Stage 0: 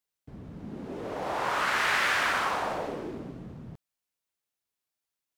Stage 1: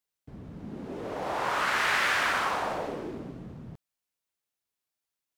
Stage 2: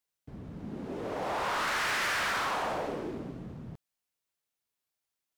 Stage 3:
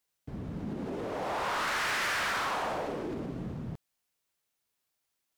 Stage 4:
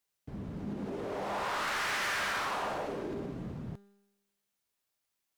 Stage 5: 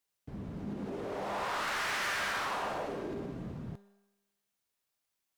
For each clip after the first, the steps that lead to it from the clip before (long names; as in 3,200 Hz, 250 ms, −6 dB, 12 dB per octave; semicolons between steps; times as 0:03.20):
no processing that can be heard
hard clipping −28 dBFS, distortion −9 dB
brickwall limiter −33.5 dBFS, peak gain reduction 5.5 dB; level +5 dB
tuned comb filter 200 Hz, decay 1 s, mix 70%; level +7.5 dB
on a send at −13 dB: linear-phase brick-wall high-pass 490 Hz + convolution reverb RT60 1.1 s, pre-delay 3 ms; on the sum: level −1 dB